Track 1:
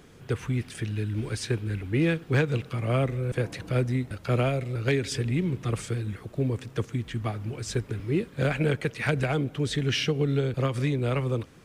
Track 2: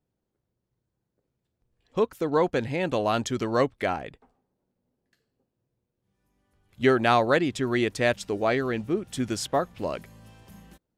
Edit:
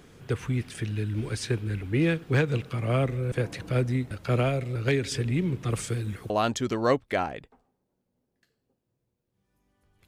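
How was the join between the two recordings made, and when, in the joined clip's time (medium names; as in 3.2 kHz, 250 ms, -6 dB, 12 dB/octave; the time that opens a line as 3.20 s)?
track 1
5.70–6.30 s: treble shelf 5.8 kHz +7 dB
6.30 s: go over to track 2 from 3.00 s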